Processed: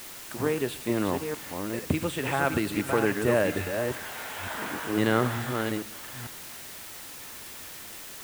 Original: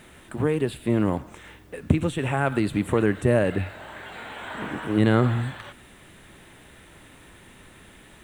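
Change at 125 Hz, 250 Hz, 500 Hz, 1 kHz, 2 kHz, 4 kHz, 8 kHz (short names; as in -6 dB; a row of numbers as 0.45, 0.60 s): -8.0, -4.5, -2.0, 0.0, +1.0, +3.0, +8.5 dB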